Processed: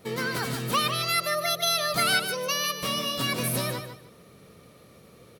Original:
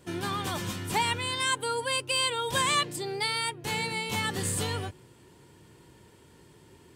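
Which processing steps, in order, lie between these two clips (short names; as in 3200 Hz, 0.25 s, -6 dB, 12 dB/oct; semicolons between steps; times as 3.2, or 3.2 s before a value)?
bell 5100 Hz -2.5 dB; varispeed +29%; on a send: feedback echo 0.15 s, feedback 22%, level -9 dB; on the sum: gain +2.5 dB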